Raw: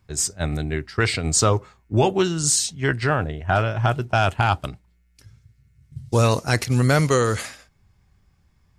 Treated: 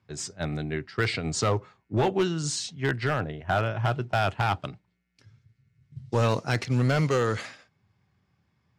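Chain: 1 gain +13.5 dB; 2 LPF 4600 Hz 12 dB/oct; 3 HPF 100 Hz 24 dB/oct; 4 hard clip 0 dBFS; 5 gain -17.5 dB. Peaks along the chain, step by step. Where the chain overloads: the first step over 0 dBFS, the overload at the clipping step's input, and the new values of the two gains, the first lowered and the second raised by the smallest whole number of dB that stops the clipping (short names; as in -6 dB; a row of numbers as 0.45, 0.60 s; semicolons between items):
+6.5, +6.5, +9.0, 0.0, -17.5 dBFS; step 1, 9.0 dB; step 1 +4.5 dB, step 5 -8.5 dB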